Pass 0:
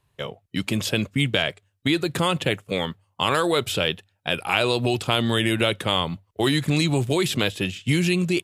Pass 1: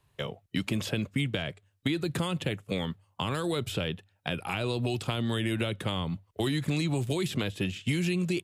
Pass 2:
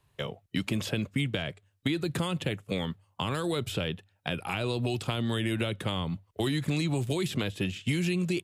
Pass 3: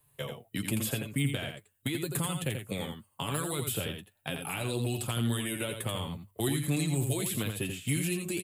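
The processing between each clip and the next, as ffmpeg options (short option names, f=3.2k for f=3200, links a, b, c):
-filter_complex "[0:a]acrossover=split=280|2500[a][b][c];[a]acompressor=threshold=-29dB:ratio=4[d];[b]acompressor=threshold=-35dB:ratio=4[e];[c]acompressor=threshold=-40dB:ratio=4[f];[d][e][f]amix=inputs=3:normalize=0"
-af anull
-af "flanger=delay=6.8:depth=2.6:regen=32:speed=0.89:shape=sinusoidal,aexciter=amount=7.3:drive=4.1:freq=7.9k,aecho=1:1:85:0.473"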